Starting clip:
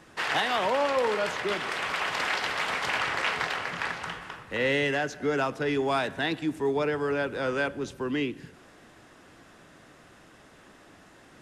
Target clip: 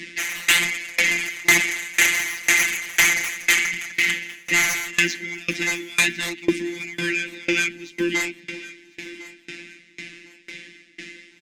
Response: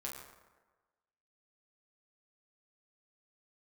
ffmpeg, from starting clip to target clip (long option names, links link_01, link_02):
-filter_complex "[0:a]highpass=58,bandreject=frequency=1900:width=23,afftfilt=real='hypot(re,im)*cos(PI*b)':imag='0':win_size=1024:overlap=0.75,bass=frequency=250:gain=-6,treble=frequency=4000:gain=4,acrossover=split=320|970[link_01][link_02][link_03];[link_02]acompressor=threshold=-44dB:ratio=8[link_04];[link_01][link_04][link_03]amix=inputs=3:normalize=0,firequalizer=gain_entry='entry(100,0);entry(160,-5);entry(240,13);entry(470,-12);entry(870,-27);entry(1300,-18);entry(2000,14);entry(3000,5);entry(7200,-4);entry(14000,-22)':delay=0.05:min_phase=1,aeval=exprs='0.355*sin(PI/2*7.08*val(0)/0.355)':channel_layout=same,flanger=delay=0.9:depth=3.1:regen=-61:speed=1.3:shape=sinusoidal,aecho=1:1:1054|2108|3162|4216:0.158|0.0666|0.028|0.0117,aeval=exprs='val(0)*pow(10,-25*if(lt(mod(2*n/s,1),2*abs(2)/1000),1-mod(2*n/s,1)/(2*abs(2)/1000),(mod(2*n/s,1)-2*abs(2)/1000)/(1-2*abs(2)/1000))/20)':channel_layout=same,volume=4.5dB"